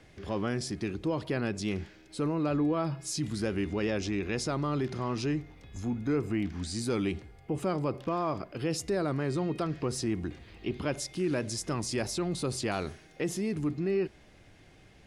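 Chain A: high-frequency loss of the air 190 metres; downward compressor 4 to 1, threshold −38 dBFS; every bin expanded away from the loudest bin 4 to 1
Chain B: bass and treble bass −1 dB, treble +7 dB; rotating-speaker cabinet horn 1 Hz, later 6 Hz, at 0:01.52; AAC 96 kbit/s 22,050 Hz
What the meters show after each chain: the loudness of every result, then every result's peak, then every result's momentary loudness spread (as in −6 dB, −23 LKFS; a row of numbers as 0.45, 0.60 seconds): −48.0, −34.0 LKFS; −28.0, −18.5 dBFS; 21, 7 LU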